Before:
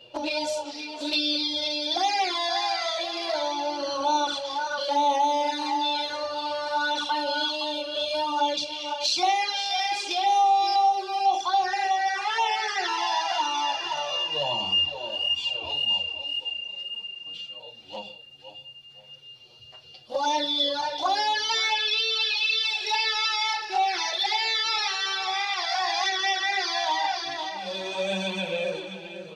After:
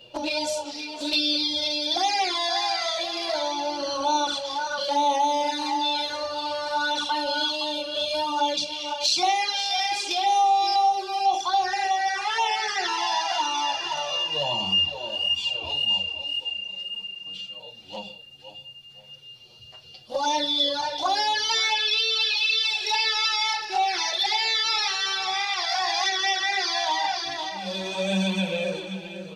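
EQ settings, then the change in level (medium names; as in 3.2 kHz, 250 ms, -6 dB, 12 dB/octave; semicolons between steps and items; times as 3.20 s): bass shelf 110 Hz +7 dB; peaking EQ 190 Hz +7.5 dB 0.23 oct; treble shelf 6 kHz +7.5 dB; 0.0 dB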